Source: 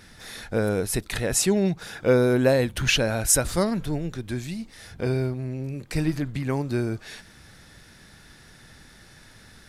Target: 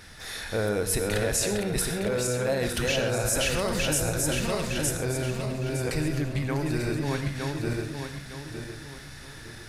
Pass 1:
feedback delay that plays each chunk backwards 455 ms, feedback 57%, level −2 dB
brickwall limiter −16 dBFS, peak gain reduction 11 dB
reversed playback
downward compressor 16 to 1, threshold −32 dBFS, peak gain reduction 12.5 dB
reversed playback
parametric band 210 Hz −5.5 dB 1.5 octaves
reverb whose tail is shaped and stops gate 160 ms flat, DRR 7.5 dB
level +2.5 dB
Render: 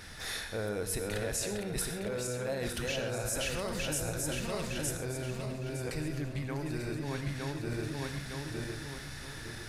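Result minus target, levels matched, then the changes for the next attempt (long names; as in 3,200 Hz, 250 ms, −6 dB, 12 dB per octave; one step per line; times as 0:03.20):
downward compressor: peak gain reduction +8.5 dB
change: downward compressor 16 to 1, threshold −23 dBFS, peak gain reduction 4 dB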